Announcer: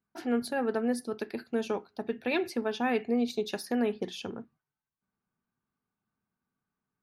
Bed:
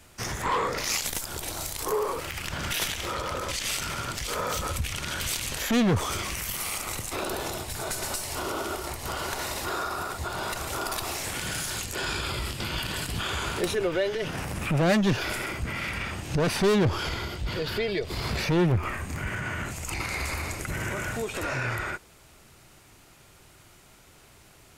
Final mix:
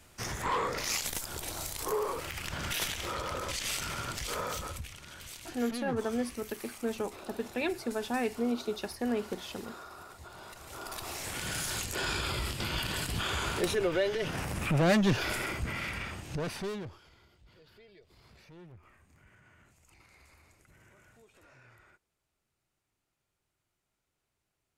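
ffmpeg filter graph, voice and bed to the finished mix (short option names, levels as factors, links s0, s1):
-filter_complex "[0:a]adelay=5300,volume=0.708[s0];[1:a]volume=2.99,afade=t=out:st=4.33:d=0.64:silence=0.251189,afade=t=in:st=10.61:d=1.1:silence=0.199526,afade=t=out:st=15.53:d=1.47:silence=0.0446684[s1];[s0][s1]amix=inputs=2:normalize=0"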